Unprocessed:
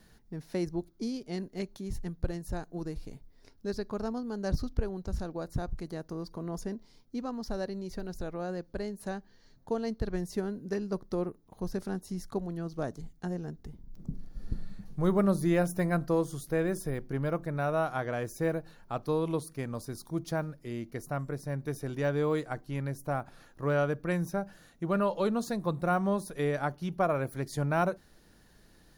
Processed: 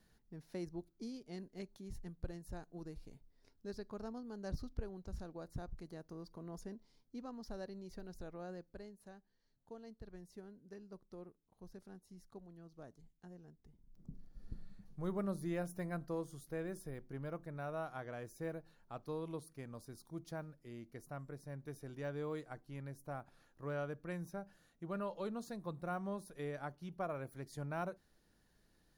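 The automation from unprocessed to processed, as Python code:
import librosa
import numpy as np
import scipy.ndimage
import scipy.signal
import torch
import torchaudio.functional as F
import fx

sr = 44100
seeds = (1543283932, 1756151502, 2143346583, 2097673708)

y = fx.gain(x, sr, db=fx.line((8.53, -11.5), (9.11, -20.0), (13.61, -20.0), (14.14, -13.0)))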